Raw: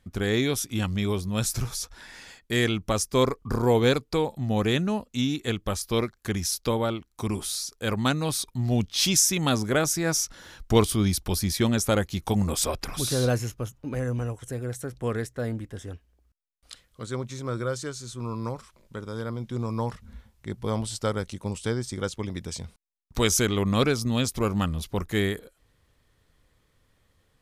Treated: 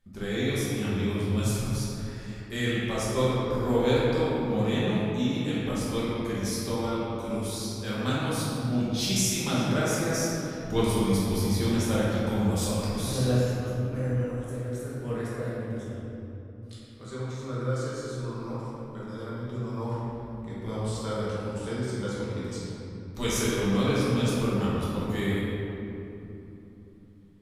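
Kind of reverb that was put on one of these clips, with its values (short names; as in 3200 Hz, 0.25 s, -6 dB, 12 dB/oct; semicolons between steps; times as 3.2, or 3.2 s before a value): shoebox room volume 140 m³, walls hard, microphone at 1.2 m; gain -12 dB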